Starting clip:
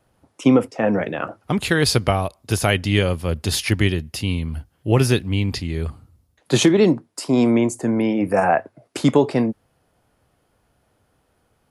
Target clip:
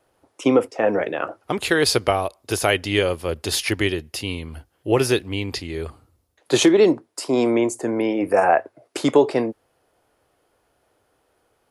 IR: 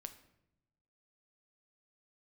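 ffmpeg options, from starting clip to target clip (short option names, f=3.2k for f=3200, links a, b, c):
-af "lowshelf=f=270:t=q:w=1.5:g=-8"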